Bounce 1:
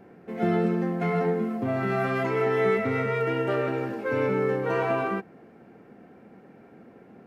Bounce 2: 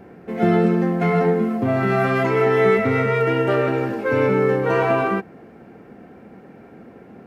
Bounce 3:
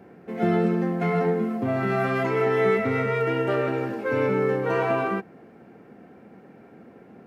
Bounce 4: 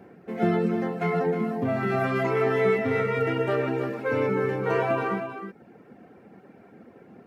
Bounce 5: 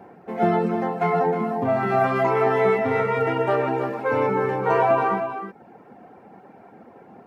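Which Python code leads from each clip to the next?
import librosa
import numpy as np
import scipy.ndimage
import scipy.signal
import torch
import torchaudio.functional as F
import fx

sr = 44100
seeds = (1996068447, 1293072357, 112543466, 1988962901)

y1 = fx.peak_eq(x, sr, hz=62.0, db=9.0, octaves=0.77)
y1 = y1 * 10.0 ** (7.0 / 20.0)
y2 = scipy.signal.sosfilt(scipy.signal.butter(2, 92.0, 'highpass', fs=sr, output='sos'), y1)
y2 = y2 * 10.0 ** (-5.0 / 20.0)
y3 = fx.dereverb_blind(y2, sr, rt60_s=0.77)
y3 = y3 + 10.0 ** (-8.5 / 20.0) * np.pad(y3, (int(313 * sr / 1000.0), 0))[:len(y3)]
y4 = fx.peak_eq(y3, sr, hz=860.0, db=12.0, octaves=0.91)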